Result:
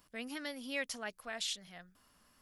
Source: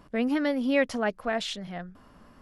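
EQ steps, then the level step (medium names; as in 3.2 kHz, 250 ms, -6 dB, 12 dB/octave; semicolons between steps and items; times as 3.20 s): pre-emphasis filter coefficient 0.97; bass shelf 280 Hz +10.5 dB; +2.0 dB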